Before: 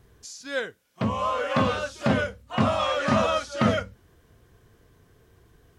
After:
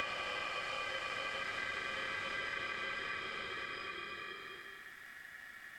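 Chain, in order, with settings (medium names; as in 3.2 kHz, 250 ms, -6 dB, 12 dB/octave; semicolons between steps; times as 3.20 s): Paulstretch 4.6×, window 1.00 s, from 3.21 s; compression 2.5:1, threshold -44 dBFS, peak gain reduction 17 dB; ring modulator 1.8 kHz; three bands compressed up and down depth 40%; trim +1.5 dB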